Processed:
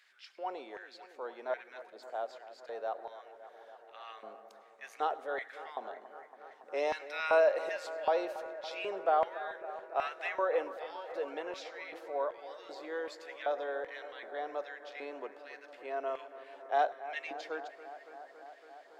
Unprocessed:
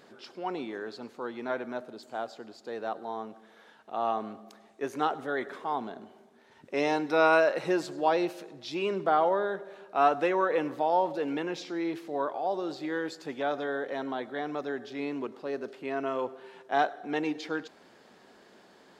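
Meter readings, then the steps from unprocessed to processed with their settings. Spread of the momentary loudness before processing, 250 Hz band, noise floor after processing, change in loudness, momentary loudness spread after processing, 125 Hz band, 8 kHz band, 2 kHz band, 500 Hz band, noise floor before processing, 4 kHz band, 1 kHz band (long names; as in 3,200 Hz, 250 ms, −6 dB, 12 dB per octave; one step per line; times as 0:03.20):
14 LU, −17.5 dB, −58 dBFS, −5.5 dB, 20 LU, below −25 dB, can't be measured, −5.5 dB, −5.0 dB, −58 dBFS, −6.0 dB, −6.5 dB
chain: auto-filter high-pass square 1.3 Hz 560–2,000 Hz
bucket-brigade delay 280 ms, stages 4,096, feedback 81%, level −14.5 dB
level −8 dB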